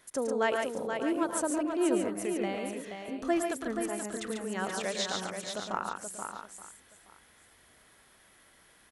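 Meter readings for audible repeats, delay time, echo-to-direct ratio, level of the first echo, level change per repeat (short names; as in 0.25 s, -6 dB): 7, 0.109 s, -1.0 dB, -8.0 dB, no steady repeat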